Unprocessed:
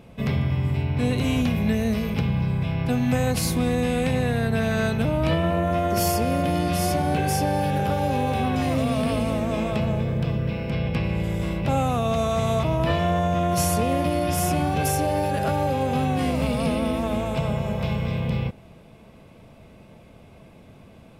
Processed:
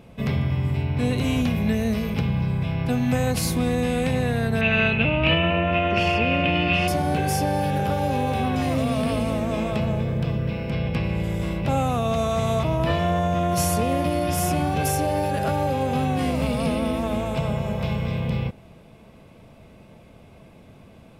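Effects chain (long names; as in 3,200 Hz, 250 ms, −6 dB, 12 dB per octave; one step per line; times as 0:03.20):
0:04.61–0:06.88: low-pass with resonance 2,700 Hz, resonance Q 9.5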